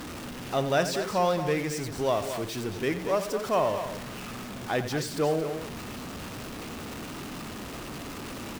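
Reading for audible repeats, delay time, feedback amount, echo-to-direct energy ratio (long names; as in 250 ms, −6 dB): 2, 89 ms, repeats not evenly spaced, −8.0 dB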